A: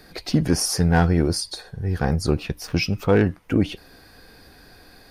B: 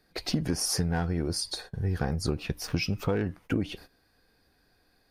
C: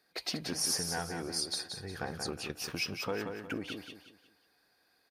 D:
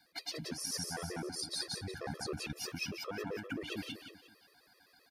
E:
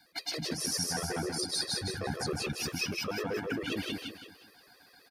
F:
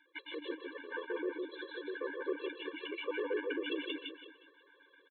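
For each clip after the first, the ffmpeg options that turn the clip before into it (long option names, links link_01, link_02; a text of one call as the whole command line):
ffmpeg -i in.wav -af "agate=range=-17dB:threshold=-41dB:ratio=16:detection=peak,acompressor=threshold=-22dB:ratio=12,volume=-1.5dB" out.wav
ffmpeg -i in.wav -filter_complex "[0:a]highpass=frequency=630:poles=1,asplit=2[link_01][link_02];[link_02]aecho=0:1:180|360|540|720:0.501|0.17|0.0579|0.0197[link_03];[link_01][link_03]amix=inputs=2:normalize=0,volume=-2dB" out.wav
ffmpeg -i in.wav -af "areverse,acompressor=threshold=-42dB:ratio=10,areverse,afftfilt=real='re*gt(sin(2*PI*7.7*pts/sr)*(1-2*mod(floor(b*sr/1024/340),2)),0)':imag='im*gt(sin(2*PI*7.7*pts/sr)*(1-2*mod(floor(b*sr/1024/340),2)),0)':win_size=1024:overlap=0.75,volume=9dB" out.wav
ffmpeg -i in.wav -af "aecho=1:1:158:0.631,volume=5dB" out.wav
ffmpeg -i in.wav -af "aresample=8000,aresample=44100,afftfilt=real='re*eq(mod(floor(b*sr/1024/300),2),1)':imag='im*eq(mod(floor(b*sr/1024/300),2),1)':win_size=1024:overlap=0.75" out.wav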